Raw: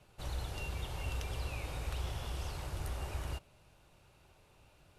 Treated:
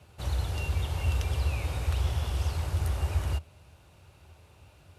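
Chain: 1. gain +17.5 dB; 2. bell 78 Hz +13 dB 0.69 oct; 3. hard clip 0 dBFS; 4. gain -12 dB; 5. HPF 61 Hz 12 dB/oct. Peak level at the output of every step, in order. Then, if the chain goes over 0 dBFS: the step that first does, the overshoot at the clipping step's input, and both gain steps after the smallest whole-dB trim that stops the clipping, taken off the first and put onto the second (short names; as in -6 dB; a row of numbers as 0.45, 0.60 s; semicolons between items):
-7.5, -3.0, -3.0, -15.0, -17.5 dBFS; no overload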